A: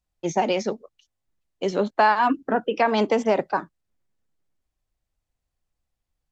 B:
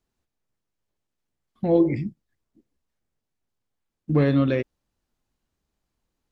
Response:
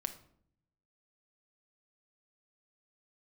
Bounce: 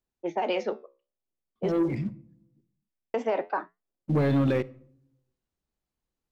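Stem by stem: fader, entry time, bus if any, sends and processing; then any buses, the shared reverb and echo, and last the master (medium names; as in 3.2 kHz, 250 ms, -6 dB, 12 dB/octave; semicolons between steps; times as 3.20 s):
+2.5 dB, 0.00 s, muted 1.72–3.14 s, no send, level-controlled noise filter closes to 440 Hz, open at -18 dBFS; three-band isolator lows -21 dB, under 270 Hz, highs -15 dB, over 3.6 kHz; flange 0.52 Hz, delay 7.2 ms, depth 8.7 ms, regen -73%
-7.0 dB, 0.00 s, send -10 dB, waveshaping leveller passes 2; auto duck -13 dB, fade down 0.75 s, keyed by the first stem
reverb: on, RT60 0.65 s, pre-delay 5 ms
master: peak limiter -18 dBFS, peak gain reduction 7 dB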